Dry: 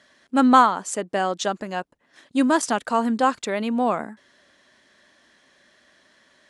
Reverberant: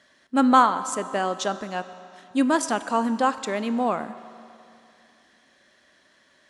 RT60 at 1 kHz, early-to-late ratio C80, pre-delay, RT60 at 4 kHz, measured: 2.7 s, 14.0 dB, 11 ms, 2.4 s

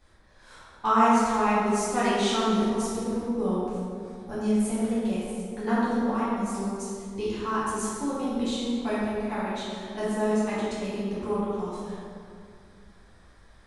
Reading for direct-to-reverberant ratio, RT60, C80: -11.0 dB, 2.3 s, -1.0 dB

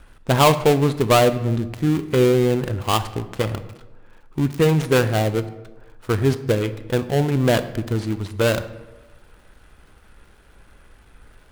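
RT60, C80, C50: 1.2 s, 15.5 dB, 13.5 dB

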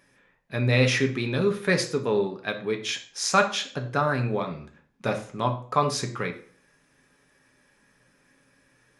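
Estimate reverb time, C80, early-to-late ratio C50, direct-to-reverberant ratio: 0.45 s, 15.5 dB, 11.5 dB, 4.0 dB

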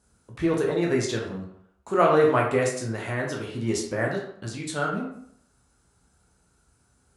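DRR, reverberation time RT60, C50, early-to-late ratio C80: -1.5 dB, 0.65 s, 5.0 dB, 8.0 dB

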